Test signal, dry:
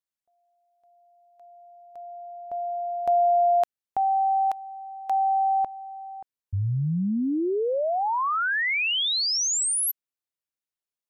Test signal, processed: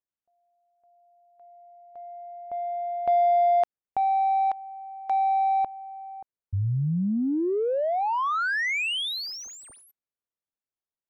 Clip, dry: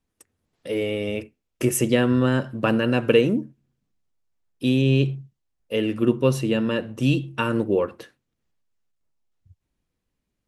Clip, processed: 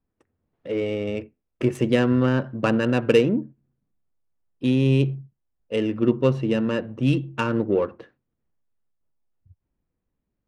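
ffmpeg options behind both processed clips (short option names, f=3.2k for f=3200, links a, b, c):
-af "adynamicsmooth=sensitivity=1.5:basefreq=1.8k"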